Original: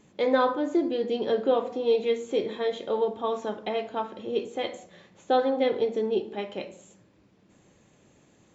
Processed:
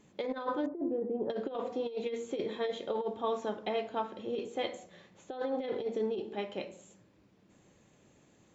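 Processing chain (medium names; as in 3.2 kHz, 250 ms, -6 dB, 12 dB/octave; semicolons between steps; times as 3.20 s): compressor with a negative ratio -26 dBFS, ratio -0.5; 0.66–1.30 s: Bessel low-pass 800 Hz, order 4; trim -6 dB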